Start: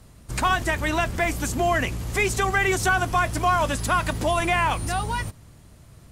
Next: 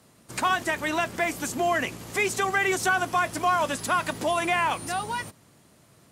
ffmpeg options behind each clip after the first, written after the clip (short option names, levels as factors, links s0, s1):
-af "highpass=200,volume=0.794"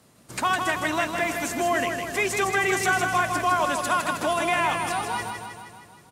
-af "aecho=1:1:158|316|474|632|790|948|1106|1264:0.531|0.313|0.185|0.109|0.0643|0.038|0.0224|0.0132"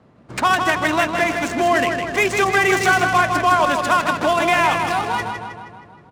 -af "adynamicsmooth=sensitivity=5.5:basefreq=1800,volume=2.24"